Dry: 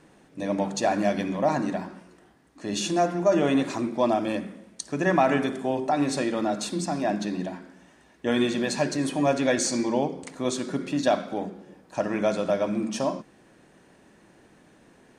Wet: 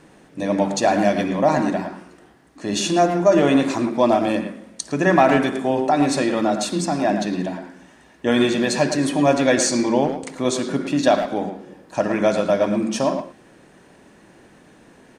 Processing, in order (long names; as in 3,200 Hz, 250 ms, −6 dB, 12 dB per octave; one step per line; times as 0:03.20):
far-end echo of a speakerphone 110 ms, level −8 dB
level +6 dB